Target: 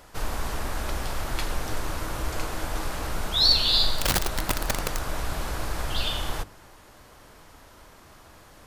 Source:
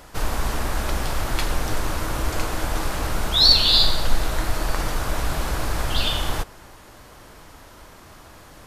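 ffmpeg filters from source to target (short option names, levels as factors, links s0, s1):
-filter_complex "[0:a]bandreject=f=50:t=h:w=6,bandreject=f=100:t=h:w=6,bandreject=f=150:t=h:w=6,bandreject=f=200:t=h:w=6,bandreject=f=250:t=h:w=6,bandreject=f=300:t=h:w=6,bandreject=f=350:t=h:w=6,asettb=1/sr,asplit=3[s0][s1][s2];[s0]atrim=end=3.984[s3];[s1]atrim=start=3.98:end=4.99,asetpts=PTS-STARTPTS,afade=t=in:d=0.004:c=qsin,afade=t=out:st=1.006:d=0.004:c=qsin,aeval=exprs='(mod(5.01*val(0)+1,2)-1)/5.01':c=same[s4];[s2]atrim=start=4.986[s5];[s3][s4]acrossfade=d=0.004:c1=hsin:c2=qsin[s6];[s6][s5]acrossfade=d=0.004:c1=qsin:c2=hsin,volume=0.562"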